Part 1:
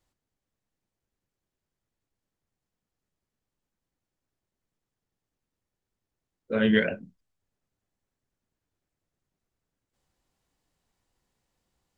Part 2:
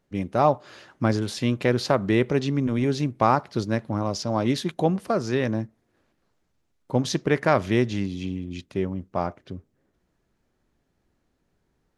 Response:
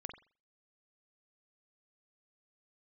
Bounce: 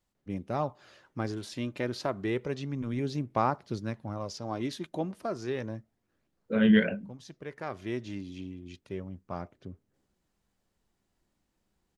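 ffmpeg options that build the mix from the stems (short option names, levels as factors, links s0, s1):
-filter_complex "[0:a]equalizer=f=200:t=o:w=0.23:g=11,volume=0.668,asplit=3[s0][s1][s2];[s1]volume=0.0708[s3];[1:a]aphaser=in_gain=1:out_gain=1:delay=3.3:decay=0.32:speed=0.31:type=sinusoidal,adelay=150,volume=0.299[s4];[s2]apad=whole_len=534730[s5];[s4][s5]sidechaincompress=threshold=0.0126:ratio=4:attack=16:release=1000[s6];[2:a]atrim=start_sample=2205[s7];[s3][s7]afir=irnorm=-1:irlink=0[s8];[s0][s6][s8]amix=inputs=3:normalize=0"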